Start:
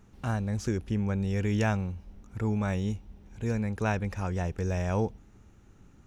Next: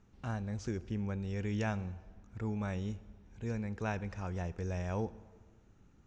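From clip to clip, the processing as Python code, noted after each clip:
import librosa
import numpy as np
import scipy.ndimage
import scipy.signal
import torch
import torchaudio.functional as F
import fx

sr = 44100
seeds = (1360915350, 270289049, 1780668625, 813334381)

y = scipy.signal.sosfilt(scipy.signal.butter(4, 7200.0, 'lowpass', fs=sr, output='sos'), x)
y = fx.rev_plate(y, sr, seeds[0], rt60_s=1.6, hf_ratio=0.8, predelay_ms=0, drr_db=17.0)
y = F.gain(torch.from_numpy(y), -7.5).numpy()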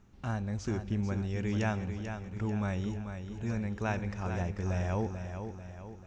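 y = fx.notch(x, sr, hz=470.0, q=12.0)
y = fx.echo_feedback(y, sr, ms=441, feedback_pct=49, wet_db=-8.0)
y = F.gain(torch.from_numpy(y), 3.5).numpy()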